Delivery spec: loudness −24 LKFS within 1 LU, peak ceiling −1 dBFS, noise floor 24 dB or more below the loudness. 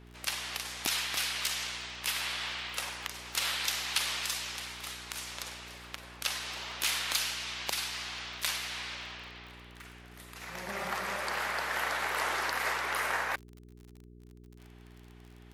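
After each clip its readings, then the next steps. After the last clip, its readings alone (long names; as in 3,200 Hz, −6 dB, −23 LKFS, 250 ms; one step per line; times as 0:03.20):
crackle rate 36 per second; mains hum 60 Hz; hum harmonics up to 420 Hz; level of the hum −51 dBFS; integrated loudness −33.0 LKFS; sample peak −13.5 dBFS; target loudness −24.0 LKFS
→ click removal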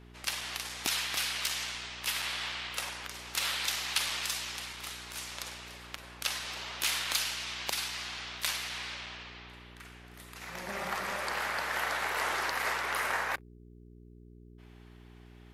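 crackle rate 0.19 per second; mains hum 60 Hz; hum harmonics up to 420 Hz; level of the hum −51 dBFS
→ hum removal 60 Hz, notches 7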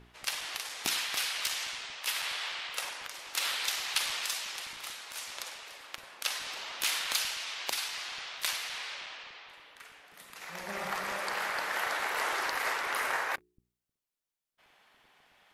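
mains hum none found; integrated loudness −33.0 LKFS; sample peak −13.5 dBFS; target loudness −24.0 LKFS
→ level +9 dB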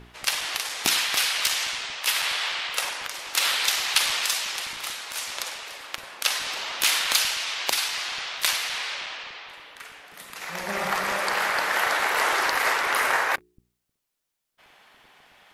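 integrated loudness −24.0 LKFS; sample peak −4.5 dBFS; background noise floor −79 dBFS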